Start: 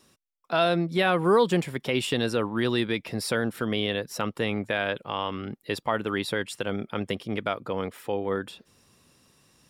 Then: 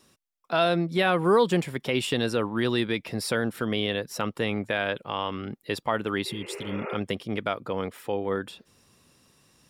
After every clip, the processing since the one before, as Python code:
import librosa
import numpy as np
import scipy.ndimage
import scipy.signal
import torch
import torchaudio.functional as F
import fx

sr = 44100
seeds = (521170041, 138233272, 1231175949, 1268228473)

y = fx.spec_repair(x, sr, seeds[0], start_s=6.29, length_s=0.63, low_hz=330.0, high_hz=2900.0, source='both')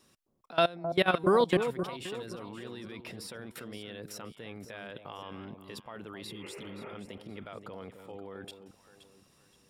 y = fx.level_steps(x, sr, step_db=22)
y = fx.echo_alternate(y, sr, ms=262, hz=890.0, feedback_pct=56, wet_db=-7.5)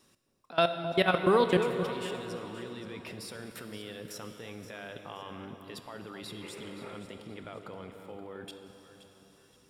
y = fx.rev_plate(x, sr, seeds[1], rt60_s=4.0, hf_ratio=0.9, predelay_ms=0, drr_db=7.5)